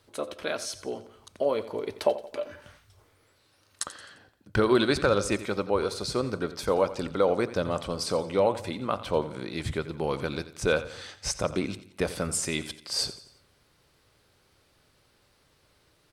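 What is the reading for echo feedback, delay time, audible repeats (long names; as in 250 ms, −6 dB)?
45%, 87 ms, 3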